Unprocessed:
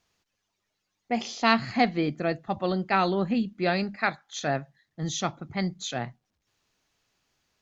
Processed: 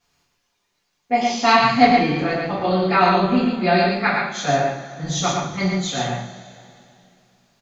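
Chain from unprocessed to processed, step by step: on a send: delay 115 ms -3.5 dB; on the sum: two-slope reverb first 0.43 s, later 2.7 s, from -18 dB, DRR -9.5 dB; trim -2.5 dB

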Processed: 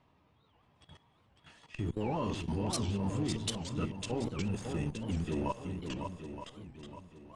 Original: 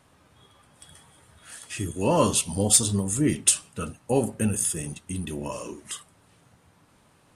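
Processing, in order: peaking EQ 1.5 kHz -8 dB 0.37 oct; band-stop 530 Hz, Q 12; level held to a coarse grid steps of 17 dB; small resonant body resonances 960/2700 Hz, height 6 dB; in parallel at -12 dB: Schmitt trigger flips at -32 dBFS; on the sum: distance through air 200 m; on a send: shuffle delay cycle 920 ms, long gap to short 1.5:1, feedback 33%, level -6 dB; on the sum: warped record 78 rpm, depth 250 cents

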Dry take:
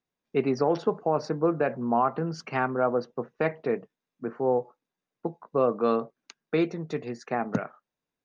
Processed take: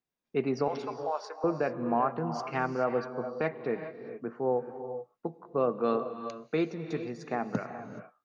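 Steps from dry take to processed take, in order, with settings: 0.68–1.44 s: high-pass 610 Hz 24 dB/octave; gated-style reverb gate 450 ms rising, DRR 8.5 dB; trim -4 dB

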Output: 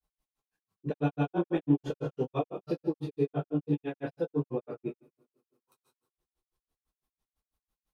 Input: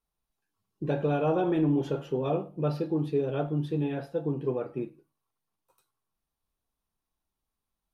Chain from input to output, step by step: two-slope reverb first 0.55 s, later 2.4 s, from -28 dB, DRR 0.5 dB; granulator 111 ms, grains 6 per s, pitch spread up and down by 0 st

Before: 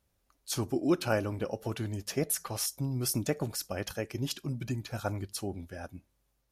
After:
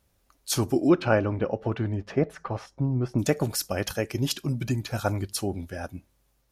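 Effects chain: 0.88–3.18 s: low-pass 2.9 kHz -> 1.2 kHz 12 dB/octave; trim +7 dB

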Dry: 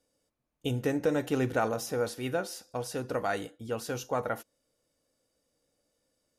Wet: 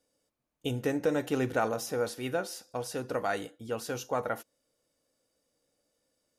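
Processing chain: bass shelf 130 Hz -5.5 dB

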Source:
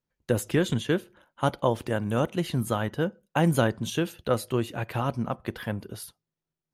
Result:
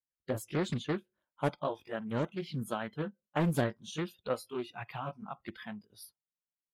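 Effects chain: sawtooth pitch modulation +1 st, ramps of 422 ms; spectral noise reduction 18 dB; loudspeaker Doppler distortion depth 0.61 ms; trim -6.5 dB

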